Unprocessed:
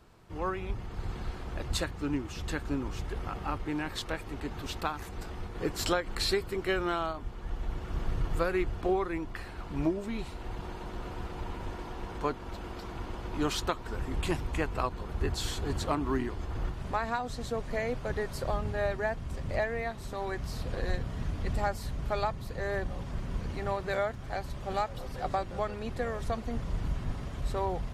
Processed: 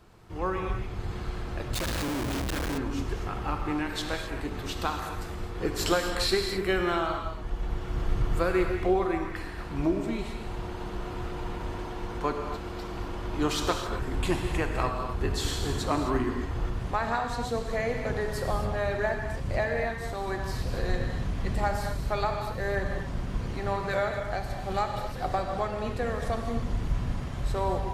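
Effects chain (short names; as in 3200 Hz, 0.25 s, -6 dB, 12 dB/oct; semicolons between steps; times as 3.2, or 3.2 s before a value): non-linear reverb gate 0.29 s flat, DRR 3 dB; 1.74–2.78 Schmitt trigger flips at -42 dBFS; gain +2 dB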